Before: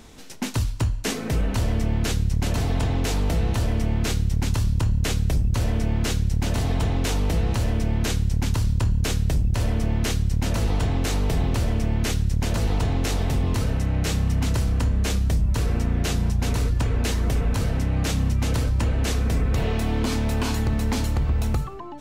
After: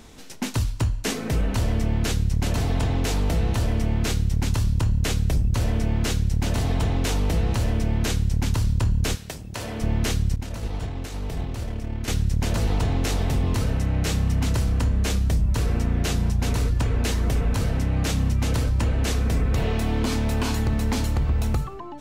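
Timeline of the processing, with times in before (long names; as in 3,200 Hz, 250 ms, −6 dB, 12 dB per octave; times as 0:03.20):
0:09.14–0:09.81: high-pass filter 970 Hz → 270 Hz 6 dB per octave
0:10.36–0:12.08: downward expander −16 dBFS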